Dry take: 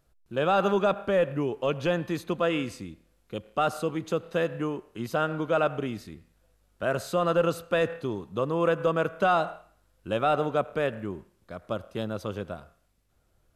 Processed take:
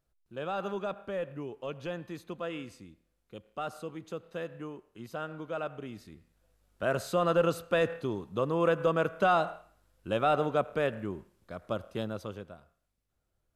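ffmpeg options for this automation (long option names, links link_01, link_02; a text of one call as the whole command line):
ffmpeg -i in.wav -af "volume=-2dB,afade=type=in:start_time=5.8:duration=1.03:silence=0.354813,afade=type=out:start_time=11.95:duration=0.56:silence=0.334965" out.wav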